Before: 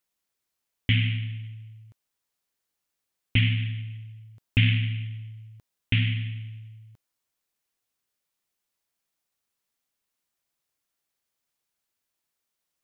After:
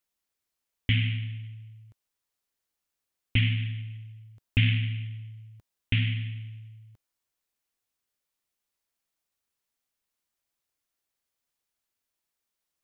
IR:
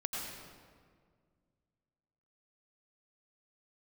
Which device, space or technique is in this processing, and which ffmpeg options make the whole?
low shelf boost with a cut just above: -af "lowshelf=frequency=110:gain=4,equalizer=frequency=150:width_type=o:width=0.76:gain=-3.5,volume=-2.5dB"

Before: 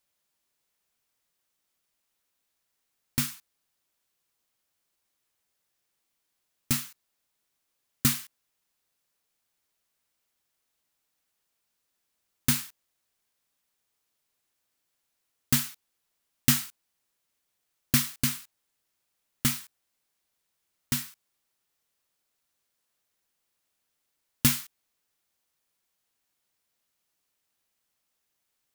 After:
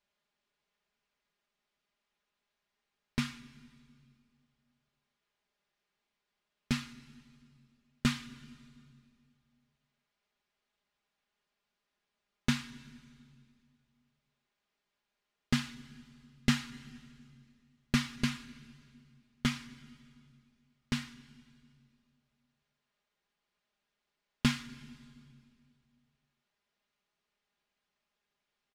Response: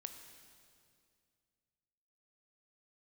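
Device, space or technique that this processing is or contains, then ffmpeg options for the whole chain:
compressed reverb return: -filter_complex "[0:a]lowpass=3600,asplit=2[link_01][link_02];[1:a]atrim=start_sample=2205[link_03];[link_02][link_03]afir=irnorm=-1:irlink=0,acompressor=threshold=-35dB:ratio=6,volume=-1.5dB[link_04];[link_01][link_04]amix=inputs=2:normalize=0,aecho=1:1:4.9:0.65,volume=-4.5dB"

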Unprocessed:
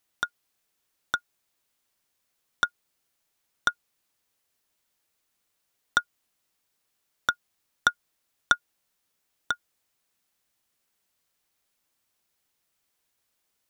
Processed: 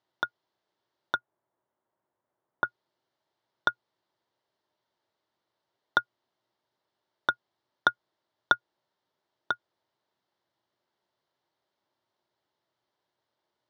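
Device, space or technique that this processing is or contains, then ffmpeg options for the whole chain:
guitar cabinet: -filter_complex "[0:a]highpass=97,equalizer=frequency=120:width_type=q:width=4:gain=7,equalizer=frequency=360:width_type=q:width=4:gain=9,equalizer=frequency=610:width_type=q:width=4:gain=8,equalizer=frequency=920:width_type=q:width=4:gain=8,equalizer=frequency=2500:width_type=q:width=4:gain=-10,lowpass=frequency=4400:width=0.5412,lowpass=frequency=4400:width=1.3066,asettb=1/sr,asplit=3[link_01][link_02][link_03];[link_01]atrim=end=1.164[link_04];[link_02]atrim=start=1.16:end=2.65,asetpts=PTS-STARTPTS,afade=type=in:duration=0.004:curve=qsin,afade=type=out:start_time=1.486:duration=0.004:curve=qsin,lowpass=1500[link_05];[link_03]atrim=start=2.646[link_06];[link_04][link_05]acrossfade=duration=0.004:curve1=hsin:curve2=qsin[link_07];[link_07][link_06]acrossfade=duration=0.004:curve1=qsin:curve2=hsin,volume=-1.5dB"

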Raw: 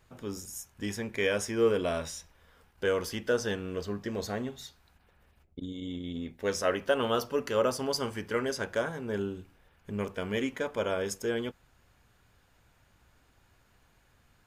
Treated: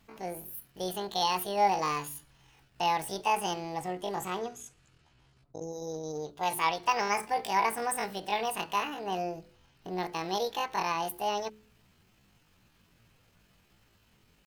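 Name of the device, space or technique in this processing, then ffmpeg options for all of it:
chipmunk voice: -filter_complex "[0:a]asetrate=78577,aresample=44100,atempo=0.561231,bandreject=frequency=71.46:width_type=h:width=4,bandreject=frequency=142.92:width_type=h:width=4,bandreject=frequency=214.38:width_type=h:width=4,bandreject=frequency=285.84:width_type=h:width=4,bandreject=frequency=357.3:width_type=h:width=4,bandreject=frequency=428.76:width_type=h:width=4,bandreject=frequency=500.22:width_type=h:width=4,bandreject=frequency=571.68:width_type=h:width=4,asettb=1/sr,asplit=3[link_01][link_02][link_03];[link_01]atrim=end=4.384[link_04];[link_02]atrim=start=4.38:end=5.72,asetpts=PTS-STARTPTS,afade=type=in:duration=0.004:curve=qsin,afade=type=out:start_time=1.336:duration=0.004:curve=qsin,lowpass=frequency=11000:width=0.5412,lowpass=frequency=11000:width=1.3066[link_05];[link_03]atrim=start=5.716[link_06];[link_04][link_05]acrossfade=duration=0.004:curve1=hsin:curve2=qsin[link_07];[link_07][link_06]acrossfade=duration=0.004:curve1=qsin:curve2=hsin"

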